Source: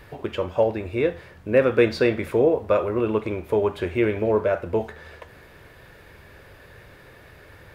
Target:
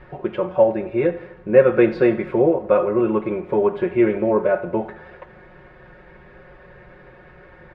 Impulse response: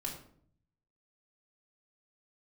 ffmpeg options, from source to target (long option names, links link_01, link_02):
-af "lowpass=1800,aecho=1:1:5.5:0.93,aecho=1:1:84|168|252|336|420:0.119|0.0666|0.0373|0.0209|0.0117,volume=1dB"